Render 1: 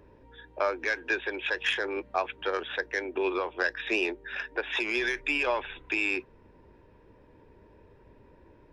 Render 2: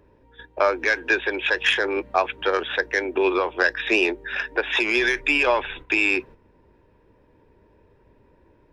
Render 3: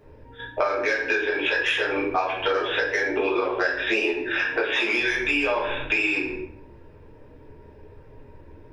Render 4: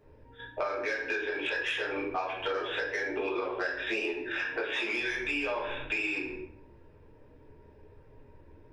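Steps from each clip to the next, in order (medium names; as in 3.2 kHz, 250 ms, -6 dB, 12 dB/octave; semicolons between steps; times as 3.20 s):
gate -48 dBFS, range -9 dB; trim +8 dB
reverberation RT60 0.55 s, pre-delay 4 ms, DRR -7 dB; compression 6:1, threshold -21 dBFS, peak gain reduction 13.5 dB
saturation -12 dBFS, distortion -25 dB; trim -8 dB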